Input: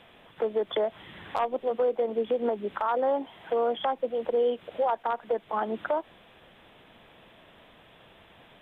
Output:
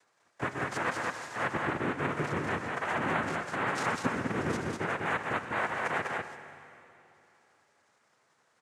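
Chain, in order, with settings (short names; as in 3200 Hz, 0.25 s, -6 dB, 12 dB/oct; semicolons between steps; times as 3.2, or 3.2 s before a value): delay-line pitch shifter -4.5 st; HPF 500 Hz 24 dB/oct; gate -49 dBFS, range -56 dB; LPF 2200 Hz; comb 7.5 ms, depth 96%; reverse; compressor, threshold -36 dBFS, peak gain reduction 13.5 dB; reverse; sample leveller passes 1; upward compressor, threshold -44 dBFS; noise vocoder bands 3; loudspeakers at several distances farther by 42 m -12 dB, 68 m -3 dB; reverb RT60 3.0 s, pre-delay 42 ms, DRR 10.5 dB; gain +3 dB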